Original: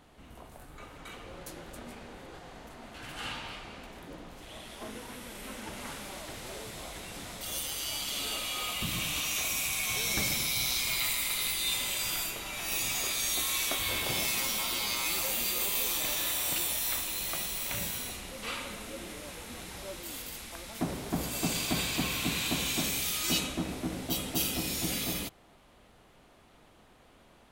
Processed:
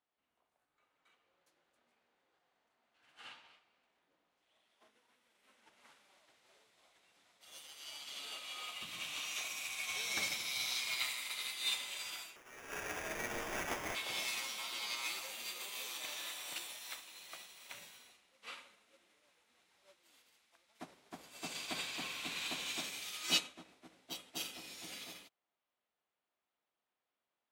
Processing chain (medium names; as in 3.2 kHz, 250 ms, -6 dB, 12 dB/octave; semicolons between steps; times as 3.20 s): high-pass 980 Hz 6 dB/octave; peaking EQ 15 kHz -14 dB 1.1 oct; 12.36–13.95 s: sample-rate reducer 4.2 kHz, jitter 0%; upward expansion 2.5:1, over -50 dBFS; trim +3 dB